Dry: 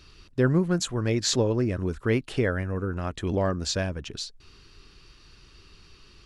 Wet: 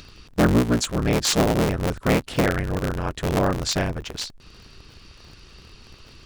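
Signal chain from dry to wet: cycle switcher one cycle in 3, inverted; upward compressor, threshold -45 dBFS; trim +4 dB

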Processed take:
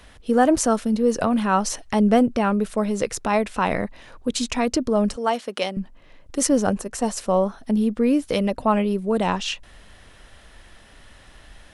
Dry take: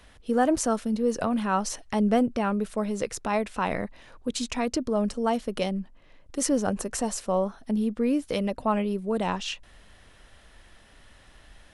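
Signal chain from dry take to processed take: 5.16–5.77 s: frequency weighting A; 6.47–7.17 s: gate -29 dBFS, range -6 dB; trim +5.5 dB

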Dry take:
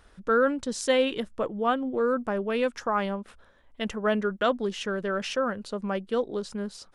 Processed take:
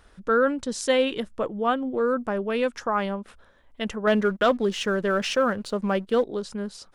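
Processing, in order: 4.07–6.24 s: waveshaping leveller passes 1; trim +1.5 dB

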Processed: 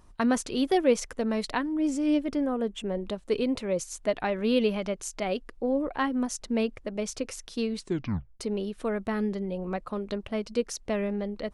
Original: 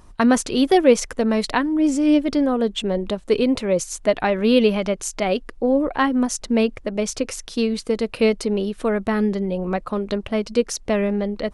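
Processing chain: 2.26–2.97 s: peaking EQ 4.2 kHz -10 dB 0.58 oct; 7.79 s: tape stop 0.61 s; trim -8.5 dB

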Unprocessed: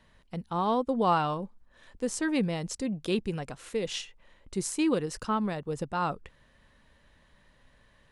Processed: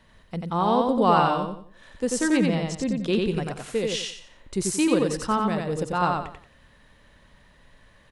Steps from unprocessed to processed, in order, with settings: 2.37–3.27 s: distance through air 66 m; feedback delay 90 ms, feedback 31%, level -3 dB; trim +4.5 dB

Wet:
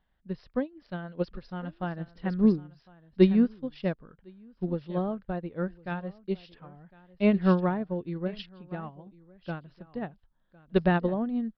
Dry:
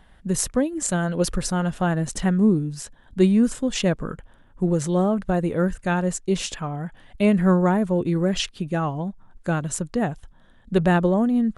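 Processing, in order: resampled via 11.025 kHz; delay 1057 ms -12.5 dB; upward expansion 2.5:1, over -27 dBFS

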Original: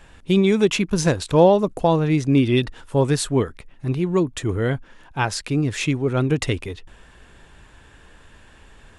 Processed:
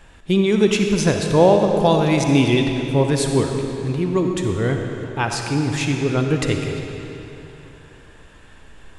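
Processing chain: 1.80–2.54 s: treble shelf 2.4 kHz +11 dB; algorithmic reverb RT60 3.3 s, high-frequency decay 0.85×, pre-delay 15 ms, DRR 3 dB

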